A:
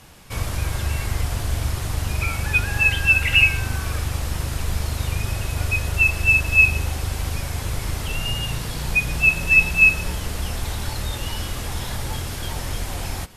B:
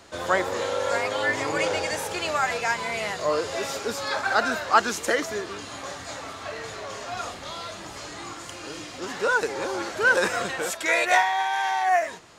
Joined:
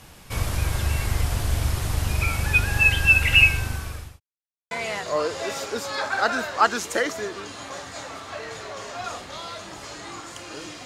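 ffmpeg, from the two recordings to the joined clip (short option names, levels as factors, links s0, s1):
-filter_complex "[0:a]apad=whole_dur=10.85,atrim=end=10.85,asplit=2[s0][s1];[s0]atrim=end=4.2,asetpts=PTS-STARTPTS,afade=t=out:st=3.45:d=0.75[s2];[s1]atrim=start=4.2:end=4.71,asetpts=PTS-STARTPTS,volume=0[s3];[1:a]atrim=start=2.84:end=8.98,asetpts=PTS-STARTPTS,afade=t=in:d=0.004:c=hsin[s4];[s2][s3][s4]concat=n=3:v=0:a=1"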